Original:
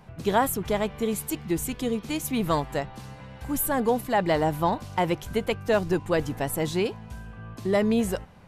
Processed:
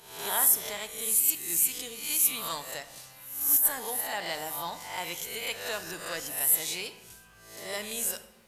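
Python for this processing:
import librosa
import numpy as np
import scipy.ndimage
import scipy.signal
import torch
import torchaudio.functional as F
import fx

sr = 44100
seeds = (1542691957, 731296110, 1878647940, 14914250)

y = fx.spec_swells(x, sr, rise_s=0.67)
y = librosa.effects.preemphasis(y, coef=0.97, zi=[0.0])
y = fx.over_compress(y, sr, threshold_db=-24.0, ratio=-0.5)
y = fx.room_shoebox(y, sr, seeds[0], volume_m3=400.0, walls='mixed', distance_m=0.4)
y = y * 10.0 ** (4.0 / 20.0)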